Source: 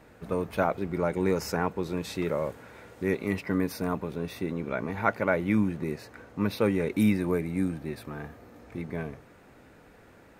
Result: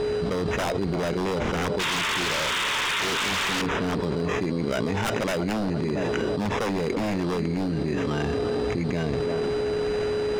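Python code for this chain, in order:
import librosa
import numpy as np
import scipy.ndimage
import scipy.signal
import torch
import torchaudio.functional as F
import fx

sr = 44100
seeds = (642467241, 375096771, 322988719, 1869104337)

y = fx.freq_compress(x, sr, knee_hz=2700.0, ratio=1.5)
y = y + 10.0 ** (-44.0 / 20.0) * np.sin(2.0 * np.pi * 420.0 * np.arange(len(y)) / sr)
y = fx.sample_hold(y, sr, seeds[0], rate_hz=4400.0, jitter_pct=0)
y = fx.spec_paint(y, sr, seeds[1], shape='noise', start_s=1.79, length_s=1.83, low_hz=860.0, high_hz=3800.0, level_db=-25.0)
y = fx.air_absorb(y, sr, metres=110.0)
y = fx.echo_banded(y, sr, ms=339, feedback_pct=45, hz=540.0, wet_db=-13.5)
y = 10.0 ** (-23.0 / 20.0) * (np.abs((y / 10.0 ** (-23.0 / 20.0) + 3.0) % 4.0 - 2.0) - 1.0)
y = fx.env_flatten(y, sr, amount_pct=100)
y = y * 10.0 ** (1.0 / 20.0)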